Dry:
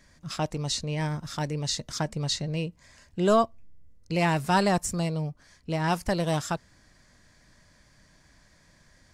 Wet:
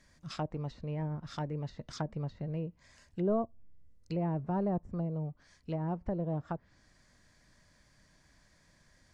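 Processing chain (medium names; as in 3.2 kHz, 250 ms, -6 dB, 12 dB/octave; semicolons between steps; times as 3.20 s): low-pass that closes with the level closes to 560 Hz, closed at -23.5 dBFS; trim -6 dB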